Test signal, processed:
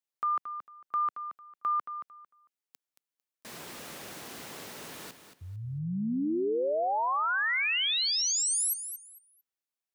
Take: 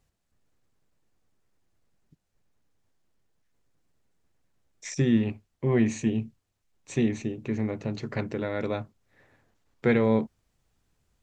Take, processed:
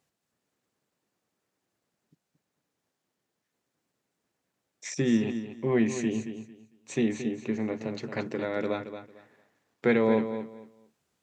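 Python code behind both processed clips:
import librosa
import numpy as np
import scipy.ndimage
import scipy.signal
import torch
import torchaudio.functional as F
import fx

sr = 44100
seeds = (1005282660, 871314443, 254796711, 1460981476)

p1 = scipy.signal.sosfilt(scipy.signal.butter(2, 190.0, 'highpass', fs=sr, output='sos'), x)
y = p1 + fx.echo_feedback(p1, sr, ms=225, feedback_pct=22, wet_db=-10, dry=0)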